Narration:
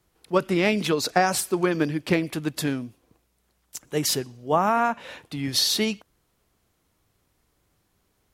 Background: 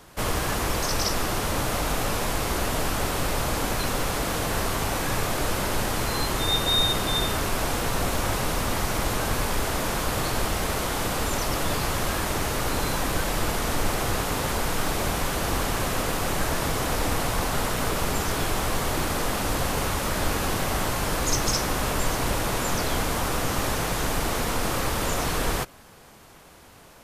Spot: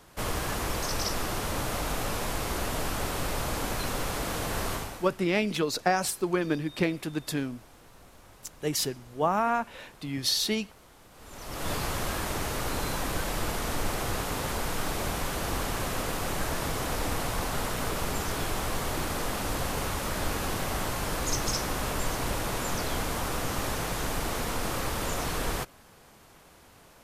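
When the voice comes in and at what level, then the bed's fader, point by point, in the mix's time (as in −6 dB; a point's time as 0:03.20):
4.70 s, −4.5 dB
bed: 0:04.74 −5 dB
0:05.23 −28 dB
0:11.10 −28 dB
0:11.69 −5 dB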